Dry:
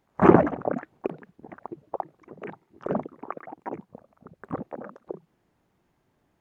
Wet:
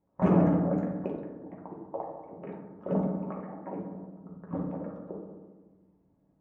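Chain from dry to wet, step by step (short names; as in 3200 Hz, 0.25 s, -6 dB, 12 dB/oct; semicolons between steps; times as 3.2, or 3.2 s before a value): limiter -13 dBFS, peak gain reduction 11 dB; bell 1500 Hz -9.5 dB 1.2 oct; reverb RT60 1.4 s, pre-delay 3 ms, DRR -3 dB; low-pass opened by the level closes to 1200 Hz, open at -19.5 dBFS; gain -6 dB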